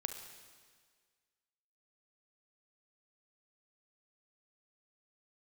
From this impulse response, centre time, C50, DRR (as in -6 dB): 32 ms, 6.5 dB, 6.0 dB